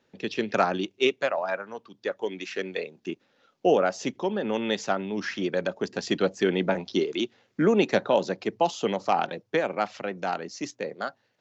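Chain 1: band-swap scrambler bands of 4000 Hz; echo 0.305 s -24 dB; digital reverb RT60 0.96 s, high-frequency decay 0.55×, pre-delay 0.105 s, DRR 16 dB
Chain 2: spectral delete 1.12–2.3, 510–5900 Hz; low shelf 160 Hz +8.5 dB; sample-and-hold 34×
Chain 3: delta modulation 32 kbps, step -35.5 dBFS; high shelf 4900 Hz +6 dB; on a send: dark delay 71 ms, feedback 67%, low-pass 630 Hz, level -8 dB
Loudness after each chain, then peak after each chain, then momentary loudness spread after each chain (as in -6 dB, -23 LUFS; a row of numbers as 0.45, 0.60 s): -24.0, -26.0, -27.5 LUFS; -7.5, -8.5, -10.0 dBFS; 11, 15, 10 LU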